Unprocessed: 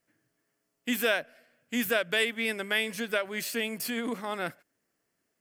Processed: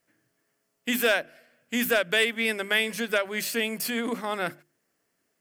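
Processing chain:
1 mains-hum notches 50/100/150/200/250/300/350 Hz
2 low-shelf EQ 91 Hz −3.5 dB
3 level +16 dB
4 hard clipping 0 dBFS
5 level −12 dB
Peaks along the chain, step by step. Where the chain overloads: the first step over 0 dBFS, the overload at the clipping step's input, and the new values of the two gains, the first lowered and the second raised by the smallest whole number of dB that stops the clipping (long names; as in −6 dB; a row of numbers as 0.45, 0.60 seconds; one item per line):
−12.0, −12.0, +4.0, 0.0, −12.0 dBFS
step 3, 4.0 dB
step 3 +12 dB, step 5 −8 dB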